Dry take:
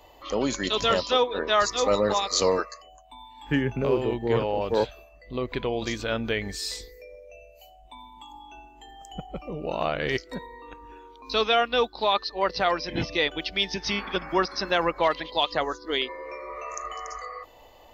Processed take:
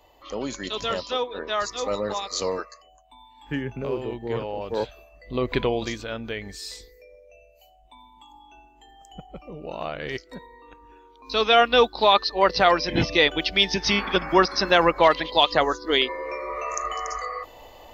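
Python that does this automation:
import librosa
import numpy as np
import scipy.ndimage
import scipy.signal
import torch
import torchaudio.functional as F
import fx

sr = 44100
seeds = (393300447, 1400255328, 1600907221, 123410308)

y = fx.gain(x, sr, db=fx.line((4.67, -4.5), (5.59, 6.5), (6.08, -4.5), (11.12, -4.5), (11.6, 6.0)))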